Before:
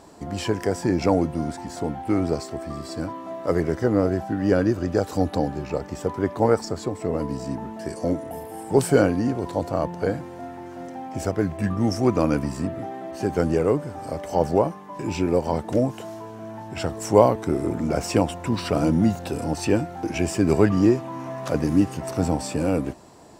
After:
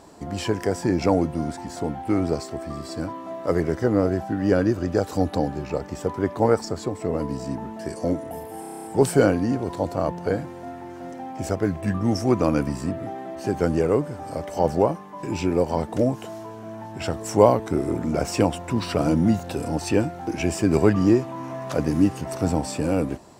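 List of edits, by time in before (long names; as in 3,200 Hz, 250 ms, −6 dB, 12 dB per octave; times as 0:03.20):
0:08.60: stutter 0.03 s, 9 plays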